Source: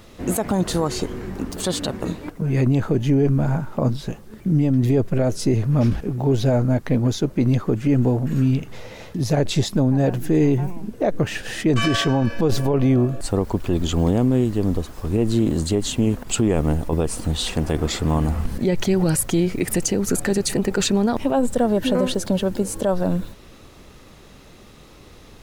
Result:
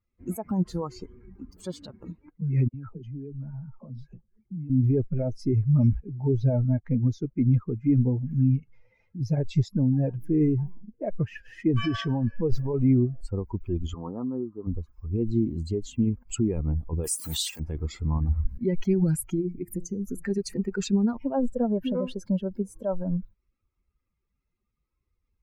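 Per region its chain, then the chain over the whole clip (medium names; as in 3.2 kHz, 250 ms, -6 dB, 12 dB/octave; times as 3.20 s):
2.68–4.70 s: compression 4:1, threshold -23 dBFS + phase dispersion lows, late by 62 ms, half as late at 630 Hz
13.94–14.67 s: high-pass 310 Hz 6 dB/octave + resonant high shelf 1.8 kHz -13 dB, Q 3
17.04–17.60 s: RIAA curve recording + swell ahead of each attack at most 44 dB/s
19.34–20.24 s: peaking EQ 2.6 kHz -9.5 dB 2.9 oct + de-hum 172.6 Hz, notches 39
whole clip: expander on every frequency bin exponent 2; bass shelf 440 Hz +10.5 dB; band-stop 730 Hz, Q 19; trim -8.5 dB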